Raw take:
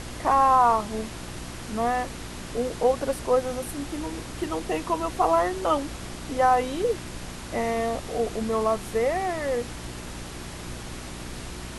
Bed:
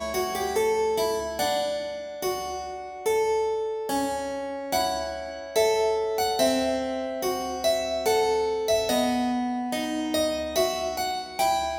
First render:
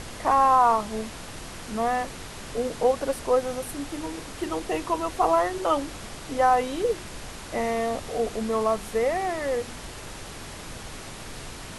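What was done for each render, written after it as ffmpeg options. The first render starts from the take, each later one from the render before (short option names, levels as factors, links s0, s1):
-af "bandreject=f=60:t=h:w=4,bandreject=f=120:t=h:w=4,bandreject=f=180:t=h:w=4,bandreject=f=240:t=h:w=4,bandreject=f=300:t=h:w=4,bandreject=f=360:t=h:w=4"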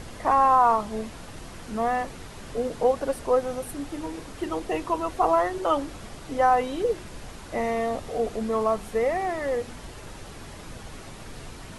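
-af "afftdn=nr=6:nf=-40"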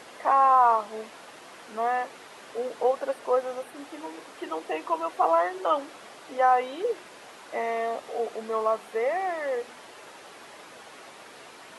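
-filter_complex "[0:a]acrossover=split=3800[s0][s1];[s1]acompressor=threshold=0.002:ratio=4:attack=1:release=60[s2];[s0][s2]amix=inputs=2:normalize=0,highpass=470"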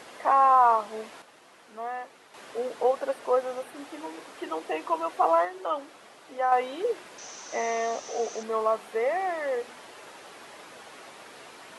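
-filter_complex "[0:a]asettb=1/sr,asplit=3[s0][s1][s2];[s0]atrim=end=7.184[s3];[s1]atrim=start=7.18:end=8.43,asetpts=PTS-STARTPTS,afade=t=in:d=0.004:c=qsin,afade=t=out:st=1.246:d=0.004:c=qsin,lowpass=f=6100:t=q:w=12[s4];[s2]atrim=start=8.426[s5];[s3][s4]acrossfade=d=0.004:c1=hsin:c2=qsin[s6];[s6][s5]acrossfade=d=0.004:c1=qsin:c2=hsin,asplit=5[s7][s8][s9][s10][s11];[s7]atrim=end=1.222[s12];[s8]atrim=start=1.218:end=2.342,asetpts=PTS-STARTPTS,volume=0.398[s13];[s9]atrim=start=2.338:end=5.452[s14];[s10]atrim=start=5.448:end=6.522,asetpts=PTS-STARTPTS,volume=0.562[s15];[s11]atrim=start=6.518[s16];[s12][s13]acrossfade=d=0.004:c1=hsin:c2=hsin[s17];[s17][s14]acrossfade=d=0.004:c1=hsin:c2=hsin[s18];[s18][s15]acrossfade=d=0.004:c1=hsin:c2=hsin[s19];[s19][s16]acrossfade=d=0.004:c1=hsin:c2=hsin"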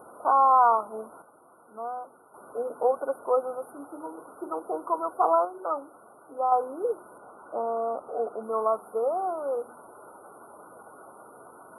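-af "afftfilt=real='re*(1-between(b*sr/4096,1500,9100))':imag='im*(1-between(b*sr/4096,1500,9100))':win_size=4096:overlap=0.75,bandreject=f=50:t=h:w=6,bandreject=f=100:t=h:w=6,bandreject=f=150:t=h:w=6,bandreject=f=200:t=h:w=6,bandreject=f=250:t=h:w=6"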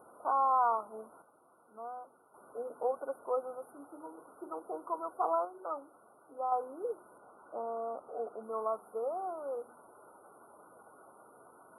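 -af "volume=0.355"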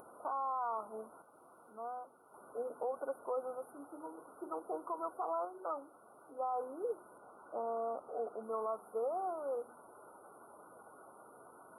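-af "alimiter=level_in=1.78:limit=0.0631:level=0:latency=1:release=75,volume=0.562,acompressor=mode=upward:threshold=0.002:ratio=2.5"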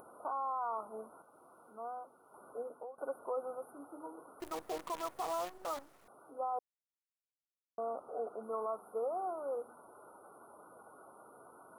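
-filter_complex "[0:a]asettb=1/sr,asplit=3[s0][s1][s2];[s0]atrim=end=4.404[s3];[s1]atrim=start=4.4:end=6.08,asetpts=PTS-STARTPTS,afade=t=in:d=0.004:c=qsin,afade=t=out:st=1.676:d=0.004:c=qsin,acrusher=bits=8:dc=4:mix=0:aa=0.000001[s4];[s2]atrim=start=6.076[s5];[s3][s4]acrossfade=d=0.004:c1=hsin:c2=qsin[s6];[s6][s5]acrossfade=d=0.004:c1=qsin:c2=hsin,asplit=4[s7][s8][s9][s10];[s7]atrim=end=2.98,asetpts=PTS-STARTPTS,afade=t=out:st=2.5:d=0.48:silence=0.141254[s11];[s8]atrim=start=2.98:end=6.59,asetpts=PTS-STARTPTS,afade=t=in:d=0.004:c=hsin:silence=0.141254,afade=t=out:st=3.606:d=0.004:c=hsin[s12];[s9]atrim=start=6.59:end=7.78,asetpts=PTS-STARTPTS,volume=0[s13];[s10]atrim=start=7.78,asetpts=PTS-STARTPTS,afade=t=in:d=0.004:c=hsin[s14];[s11][s12][s13][s14]concat=n=4:v=0:a=1"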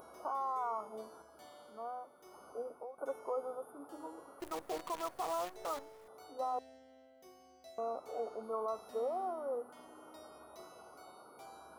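-filter_complex "[1:a]volume=0.0251[s0];[0:a][s0]amix=inputs=2:normalize=0"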